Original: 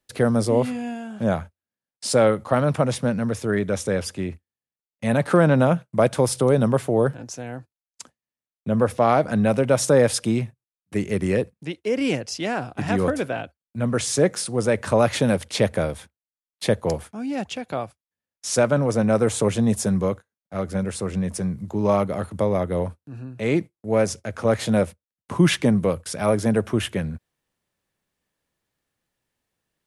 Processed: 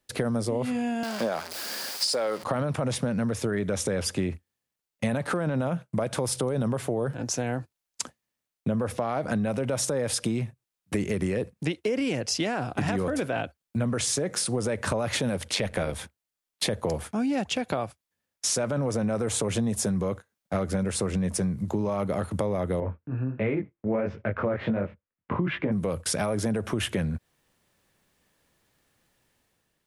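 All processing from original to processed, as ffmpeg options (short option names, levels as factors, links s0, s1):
-filter_complex "[0:a]asettb=1/sr,asplit=3[s0][s1][s2];[s0]atrim=end=1.034[s3];[s1]atrim=start=1.03:end=2.44,asetpts=PTS-STARTPTS,afade=t=in:d=0.004:c=qsin,afade=t=out:st=1.406:d=0.004:c=qsin,aeval=exprs='val(0)+0.5*0.02*sgn(val(0))':c=same,highpass=400,equalizer=f=4800:w=4.3:g=11.5[s4];[s2]atrim=start=2.436[s5];[s3][s4]acrossfade=d=0.004:c1=hsin:c2=qsin[s6];[s6][s5]acrossfade=d=0.004:c1=qsin:c2=hsin,asettb=1/sr,asplit=3[s7][s8][s9];[s7]atrim=end=15.534[s10];[s8]atrim=start=15.53:end=15.93,asetpts=PTS-STARTPTS,afade=t=in:d=0.004:c=qsin,afade=t=out:st=0.396:d=0.004:c=qsin,equalizer=f=2500:w=0.67:g=5,tremolo=f=96:d=0.621[s11];[s9]atrim=start=15.926[s12];[s10][s11]acrossfade=d=0.004:c1=hsin:c2=qsin[s13];[s13][s12]acrossfade=d=0.004:c1=qsin:c2=hsin,asettb=1/sr,asplit=3[s14][s15][s16];[s14]atrim=end=22.804[s17];[s15]atrim=start=22.8:end=25.72,asetpts=PTS-STARTPTS,afade=t=in:d=0.004:c=qsin,afade=t=out:st=2.916:d=0.004:c=qsin,lowpass=f=2400:w=0.5412,lowpass=f=2400:w=1.3066,equalizer=f=750:w=4.7:g=-3.5,flanger=delay=19:depth=5:speed=1.4[s18];[s16]atrim=start=25.716[s19];[s17][s18]acrossfade=d=0.004:c1=hsin:c2=qsin[s20];[s20][s19]acrossfade=d=0.004:c1=qsin:c2=hsin,dynaudnorm=f=190:g=7:m=2.51,alimiter=limit=0.266:level=0:latency=1:release=39,acompressor=threshold=0.0447:ratio=6,volume=1.33"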